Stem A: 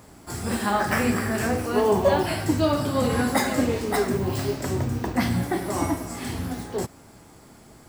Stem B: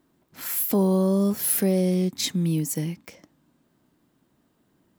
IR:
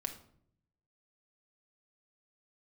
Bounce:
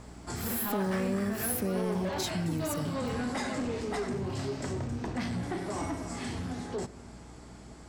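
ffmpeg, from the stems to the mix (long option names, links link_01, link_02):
-filter_complex "[0:a]asoftclip=type=tanh:threshold=-21.5dB,lowpass=frequency=8500:width=0.5412,lowpass=frequency=8500:width=1.3066,aeval=exprs='val(0)+0.00447*(sin(2*PI*60*n/s)+sin(2*PI*2*60*n/s)/2+sin(2*PI*3*60*n/s)/3+sin(2*PI*4*60*n/s)/4+sin(2*PI*5*60*n/s)/5)':channel_layout=same,volume=-4dB,asplit=2[link_01][link_02];[link_02]volume=-7dB[link_03];[1:a]volume=-1.5dB[link_04];[2:a]atrim=start_sample=2205[link_05];[link_03][link_05]afir=irnorm=-1:irlink=0[link_06];[link_01][link_04][link_06]amix=inputs=3:normalize=0,acompressor=threshold=-35dB:ratio=2"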